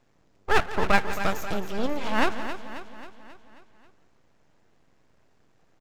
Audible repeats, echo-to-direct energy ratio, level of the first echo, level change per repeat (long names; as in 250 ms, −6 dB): 8, −8.5 dB, −15.5 dB, repeats not evenly spaced